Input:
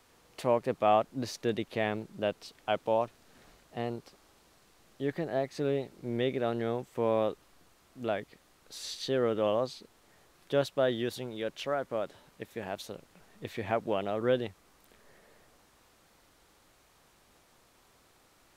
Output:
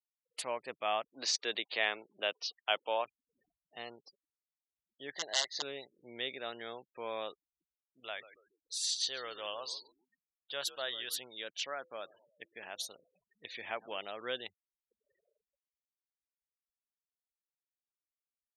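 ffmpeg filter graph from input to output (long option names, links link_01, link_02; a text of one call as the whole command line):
ffmpeg -i in.wav -filter_complex "[0:a]asettb=1/sr,asplit=3[link_01][link_02][link_03];[link_01]atrim=end=1.084[link_04];[link_02]atrim=start=1.08:end=3.05,asetpts=PTS-STARTPTS,afade=type=in:duration=0.004:curve=qsin,afade=type=out:start_time=1.966:duration=0.004:curve=qsin,agate=range=-33dB:threshold=-56dB:ratio=3:release=100:detection=peak,acrossover=split=270 6600:gain=0.224 1 0.126[link_05][link_06][link_07];[link_05][link_06][link_07]amix=inputs=3:normalize=0,acontrast=36[link_08];[link_03]atrim=start=3.046[link_09];[link_04][link_08]acrossfade=duration=0.004:curve1=hsin:curve2=qsin[link_10];[link_10][link_09]acrossfade=duration=0.004:curve1=qsin:curve2=hsin,asettb=1/sr,asplit=3[link_11][link_12][link_13];[link_11]atrim=end=5.154[link_14];[link_12]atrim=start=5.15:end=5.62,asetpts=PTS-STARTPTS,afade=type=in:duration=0.004:curve=qsin,afade=type=out:start_time=0.466:duration=0.004:curve=qsin,aeval=exprs='(mod(15.8*val(0)+1,2)-1)/15.8':channel_layout=same,asuperstop=centerf=2400:order=8:qfactor=3.5,highpass=110,equalizer=frequency=140:width_type=q:width=4:gain=-9,equalizer=frequency=250:width_type=q:width=4:gain=-8,equalizer=frequency=660:width_type=q:width=4:gain=7,equalizer=frequency=1300:width_type=q:width=4:gain=-7,equalizer=frequency=2200:width_type=q:width=4:gain=5,equalizer=frequency=4000:width_type=q:width=4:gain=6,lowpass=frequency=6600:width=0.5412,lowpass=frequency=6600:width=1.3066[link_15];[link_13]atrim=start=5.616[link_16];[link_14][link_15]acrossfade=duration=0.004:curve1=hsin:curve2=qsin[link_17];[link_17][link_16]acrossfade=duration=0.004:curve1=qsin:curve2=hsin,asettb=1/sr,asplit=3[link_18][link_19][link_20];[link_18]atrim=end=8.004[link_21];[link_19]atrim=start=8:end=11.19,asetpts=PTS-STARTPTS,afade=type=in:duration=0.004:curve=qsin,afade=type=out:start_time=3.186:duration=0.004:curve=qsin,equalizer=frequency=250:width_type=o:width=1.8:gain=-10,asplit=5[link_22][link_23][link_24][link_25][link_26];[link_23]adelay=140,afreqshift=-86,volume=-14dB[link_27];[link_24]adelay=280,afreqshift=-172,volume=-21.5dB[link_28];[link_25]adelay=420,afreqshift=-258,volume=-29.1dB[link_29];[link_26]adelay=560,afreqshift=-344,volume=-36.6dB[link_30];[link_22][link_27][link_28][link_29][link_30]amix=inputs=5:normalize=0,atrim=end_sample=140679[link_31];[link_20]atrim=start=11.186[link_32];[link_21][link_31]acrossfade=duration=0.004:curve1=hsin:curve2=qsin[link_33];[link_33][link_32]acrossfade=duration=0.004:curve1=qsin:curve2=hsin,asettb=1/sr,asplit=3[link_34][link_35][link_36];[link_34]atrim=end=11.814[link_37];[link_35]atrim=start=11.81:end=13.99,asetpts=PTS-STARTPTS,afade=type=in:duration=0.004:curve=qsin,afade=type=out:start_time=2.176:duration=0.004:curve=qsin,bandreject=frequency=169:width_type=h:width=4,bandreject=frequency=338:width_type=h:width=4,bandreject=frequency=507:width_type=h:width=4,aecho=1:1:112|224|336|448:0.0794|0.0461|0.0267|0.0155,atrim=end_sample=96138[link_38];[link_36]atrim=start=13.986[link_39];[link_37][link_38]acrossfade=duration=0.004:curve1=hsin:curve2=qsin[link_40];[link_40][link_39]acrossfade=duration=0.004:curve1=qsin:curve2=hsin,afftfilt=real='re*gte(hypot(re,im),0.00447)':imag='im*gte(hypot(re,im),0.00447)':win_size=1024:overlap=0.75,aderivative,volume=10dB" out.wav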